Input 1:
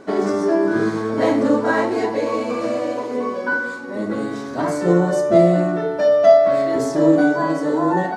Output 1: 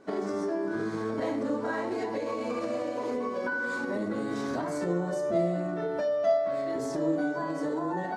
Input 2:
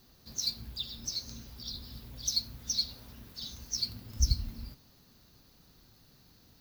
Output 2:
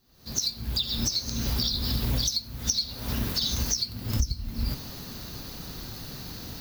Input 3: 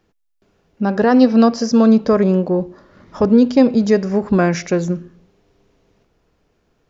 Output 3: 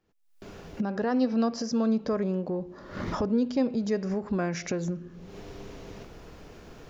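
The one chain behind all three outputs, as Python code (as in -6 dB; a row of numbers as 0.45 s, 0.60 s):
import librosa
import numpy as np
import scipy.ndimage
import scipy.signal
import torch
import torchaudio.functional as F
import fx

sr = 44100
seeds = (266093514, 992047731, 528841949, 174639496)

y = fx.recorder_agc(x, sr, target_db=-10.0, rise_db_per_s=65.0, max_gain_db=30)
y = y * 10.0 ** (-30 / 20.0) / np.sqrt(np.mean(np.square(y)))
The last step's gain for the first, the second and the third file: -14.0 dB, -8.0 dB, -14.0 dB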